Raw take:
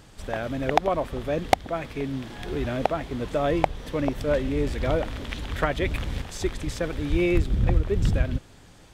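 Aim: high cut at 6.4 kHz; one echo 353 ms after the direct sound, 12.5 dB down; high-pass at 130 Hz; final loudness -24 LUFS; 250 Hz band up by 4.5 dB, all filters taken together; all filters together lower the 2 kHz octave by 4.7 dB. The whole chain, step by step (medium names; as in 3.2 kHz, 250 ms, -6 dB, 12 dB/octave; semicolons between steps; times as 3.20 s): high-pass 130 Hz; low-pass 6.4 kHz; peaking EQ 250 Hz +6.5 dB; peaking EQ 2 kHz -6 dB; delay 353 ms -12.5 dB; trim +2 dB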